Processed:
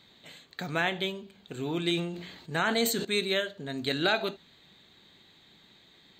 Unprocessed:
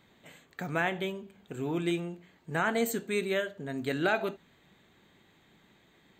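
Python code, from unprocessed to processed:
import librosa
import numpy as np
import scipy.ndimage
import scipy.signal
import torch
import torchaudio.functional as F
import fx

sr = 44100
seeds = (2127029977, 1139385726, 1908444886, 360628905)

y = fx.peak_eq(x, sr, hz=4100.0, db=14.5, octaves=0.77)
y = fx.sustainer(y, sr, db_per_s=52.0, at=(1.93, 3.05))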